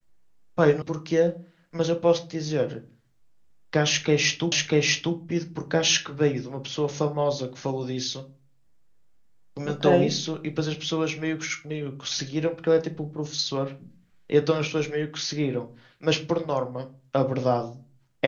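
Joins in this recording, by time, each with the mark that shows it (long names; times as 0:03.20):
0:00.82: cut off before it has died away
0:04.52: the same again, the last 0.64 s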